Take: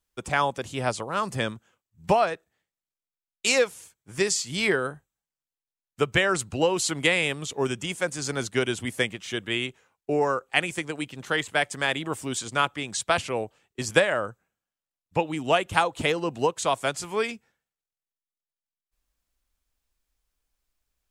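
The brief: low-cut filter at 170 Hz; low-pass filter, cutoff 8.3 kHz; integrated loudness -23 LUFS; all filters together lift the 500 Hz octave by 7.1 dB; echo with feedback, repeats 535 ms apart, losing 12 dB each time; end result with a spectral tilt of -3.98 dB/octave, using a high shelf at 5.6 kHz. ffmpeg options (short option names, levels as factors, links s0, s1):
-af "highpass=170,lowpass=8300,equalizer=f=500:t=o:g=8.5,highshelf=f=5600:g=-7,aecho=1:1:535|1070|1605:0.251|0.0628|0.0157"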